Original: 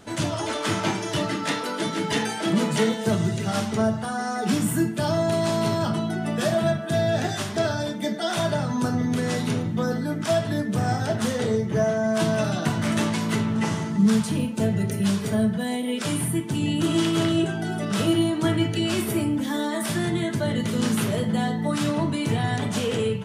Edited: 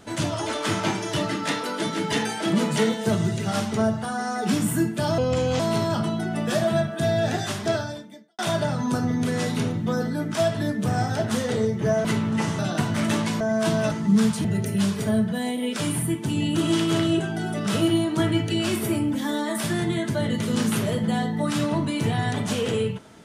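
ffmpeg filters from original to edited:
-filter_complex "[0:a]asplit=9[s0][s1][s2][s3][s4][s5][s6][s7][s8];[s0]atrim=end=5.184[s9];[s1]atrim=start=5.18:end=5.5,asetpts=PTS-STARTPTS,asetrate=33957,aresample=44100,atrim=end_sample=18327,asetpts=PTS-STARTPTS[s10];[s2]atrim=start=5.496:end=8.29,asetpts=PTS-STARTPTS,afade=t=out:st=2.124:d=0.67:c=qua[s11];[s3]atrim=start=8.29:end=11.952,asetpts=PTS-STARTPTS,afade=t=in:d=0.004:c=hsin[s12];[s4]atrim=start=13.278:end=13.822[s13];[s5]atrim=start=12.458:end=13.282[s14];[s6]atrim=start=11.948:end=12.462[s15];[s7]atrim=start=13.818:end=14.352[s16];[s8]atrim=start=14.698[s17];[s9][s10]acrossfade=d=0.004:c1=hsin:c2=hsin[s18];[s11][s12]concat=n=2:v=0:a=1[s19];[s18][s19]acrossfade=d=0.004:c1=hsin:c2=hsin[s20];[s20][s13]acrossfade=d=0.004:c1=hsin:c2=hsin[s21];[s21][s14]acrossfade=d=0.004:c1=hsin:c2=hsin[s22];[s22][s15]acrossfade=d=0.004:c1=hsin:c2=hsin[s23];[s23][s16]acrossfade=d=0.004:c1=hsin:c2=hsin[s24];[s24][s17]acrossfade=d=0.004:c1=hsin:c2=hsin"

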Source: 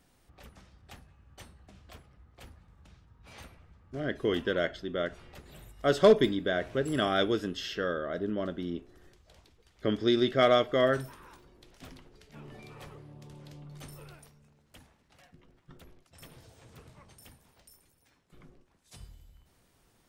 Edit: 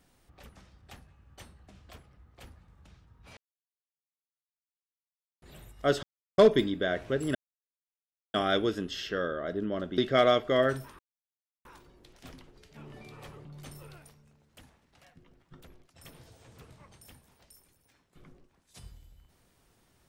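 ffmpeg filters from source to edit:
-filter_complex "[0:a]asplit=8[s0][s1][s2][s3][s4][s5][s6][s7];[s0]atrim=end=3.37,asetpts=PTS-STARTPTS,afade=t=out:st=3.366:d=0.004:c=hsin[s8];[s1]atrim=start=3.37:end=5.42,asetpts=PTS-STARTPTS,volume=0[s9];[s2]atrim=start=5.42:end=6.03,asetpts=PTS-STARTPTS,afade=t=in:d=0.004:c=hsin,afade=t=out:st=0.606:d=0.004:c=hsin,apad=pad_dur=0.35[s10];[s3]atrim=start=6.03:end=7,asetpts=PTS-STARTPTS,afade=t=in:d=0.004:c=hsin,afade=t=out:st=0.966:d=0.004:c=hsin,apad=pad_dur=0.99[s11];[s4]atrim=start=7:end=8.642,asetpts=PTS-STARTPTS,afade=t=in:d=0.004:c=hsin[s12];[s5]atrim=start=10.218:end=11.23,asetpts=PTS-STARTPTS,afade=t=out:st=1.008:d=0.004:c=hsin,apad=pad_dur=0.66[s13];[s6]atrim=start=11.23:end=13.032,asetpts=PTS-STARTPTS,afade=t=in:d=0.004:c=hsin[s14];[s7]atrim=start=13.618[s15];[s8][s9][s10][s11][s12]concat=n=5:v=0:a=1[s16];[s13][s14]concat=n=2:v=0:a=1[s17];[s16][s17]acrossfade=d=0.004:c1=hsin:c2=hsin[s18];[s18][s15]acrossfade=d=0.004:c1=hsin:c2=hsin"

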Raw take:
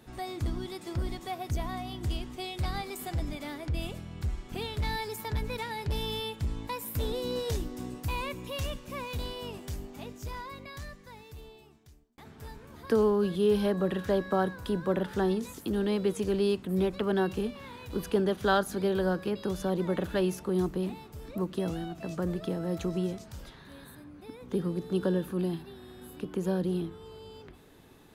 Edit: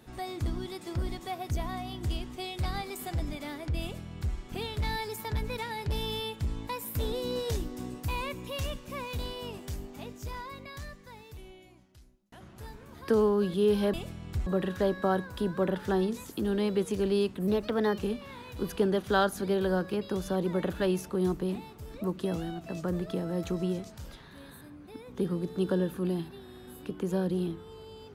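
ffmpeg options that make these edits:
-filter_complex "[0:a]asplit=7[s0][s1][s2][s3][s4][s5][s6];[s0]atrim=end=11.374[s7];[s1]atrim=start=11.37:end=12.42,asetpts=PTS-STARTPTS,asetrate=37485,aresample=44100,atrim=end_sample=54476,asetpts=PTS-STARTPTS[s8];[s2]atrim=start=12.416:end=13.752[s9];[s3]atrim=start=3.818:end=4.352[s10];[s4]atrim=start=13.748:end=16.764[s11];[s5]atrim=start=16.76:end=17.32,asetpts=PTS-STARTPTS,asetrate=48951,aresample=44100[s12];[s6]atrim=start=17.316[s13];[s7][s8]acrossfade=d=0.004:c1=hsin:c2=hsin[s14];[s14][s9]acrossfade=d=0.004:c1=hsin:c2=hsin[s15];[s15][s10]acrossfade=d=0.004:c1=hsin:c2=hsin[s16];[s16][s11]acrossfade=d=0.004:c1=hsin:c2=hsin[s17];[s17][s12]acrossfade=d=0.004:c1=hsin:c2=hsin[s18];[s18][s13]acrossfade=d=0.004:c1=hsin:c2=hsin"

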